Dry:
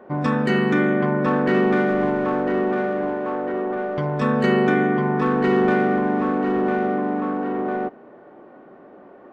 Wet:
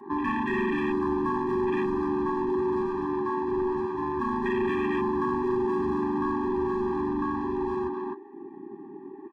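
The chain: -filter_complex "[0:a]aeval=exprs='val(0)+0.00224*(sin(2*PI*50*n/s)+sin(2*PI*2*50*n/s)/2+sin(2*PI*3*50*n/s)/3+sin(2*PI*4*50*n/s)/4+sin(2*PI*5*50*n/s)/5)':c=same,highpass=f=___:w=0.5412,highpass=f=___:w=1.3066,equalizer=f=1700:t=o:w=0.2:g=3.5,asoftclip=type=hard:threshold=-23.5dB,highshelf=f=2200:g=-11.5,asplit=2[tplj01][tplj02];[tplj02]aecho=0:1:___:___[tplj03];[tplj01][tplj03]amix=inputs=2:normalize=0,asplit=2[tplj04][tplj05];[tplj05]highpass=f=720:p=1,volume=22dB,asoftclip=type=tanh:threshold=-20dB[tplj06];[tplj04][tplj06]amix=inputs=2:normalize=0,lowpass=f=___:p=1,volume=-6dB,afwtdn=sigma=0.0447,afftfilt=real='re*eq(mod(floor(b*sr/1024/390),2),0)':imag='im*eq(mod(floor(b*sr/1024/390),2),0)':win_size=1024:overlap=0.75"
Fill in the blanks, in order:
230, 230, 254, 0.422, 4700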